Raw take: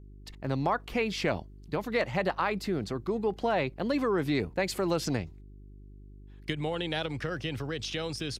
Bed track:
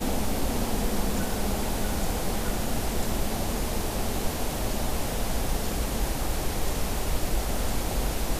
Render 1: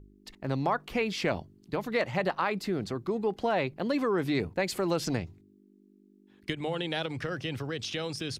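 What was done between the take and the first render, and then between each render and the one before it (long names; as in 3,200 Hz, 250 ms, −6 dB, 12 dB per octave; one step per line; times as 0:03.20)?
hum removal 50 Hz, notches 3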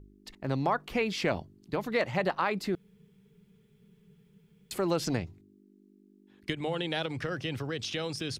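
0:02.75–0:04.71: fill with room tone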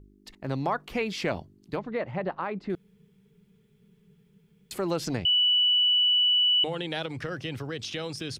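0:01.79–0:02.70: head-to-tape spacing loss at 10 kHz 34 dB
0:05.25–0:06.64: beep over 2,960 Hz −19 dBFS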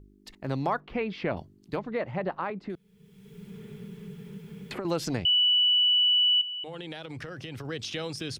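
0:00.80–0:01.37: high-frequency loss of the air 330 metres
0:02.50–0:04.85: multiband upward and downward compressor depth 100%
0:06.41–0:07.65: downward compressor 12 to 1, threshold −34 dBFS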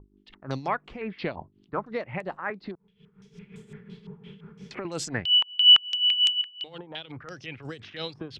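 amplitude tremolo 5.6 Hz, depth 72%
low-pass on a step sequencer 5.9 Hz 980–7,700 Hz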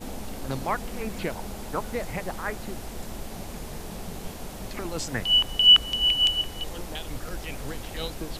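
mix in bed track −9 dB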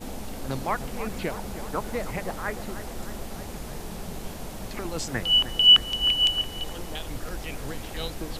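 bucket-brigade delay 310 ms, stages 4,096, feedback 71%, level −12 dB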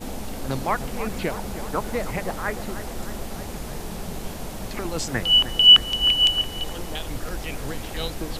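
level +3.5 dB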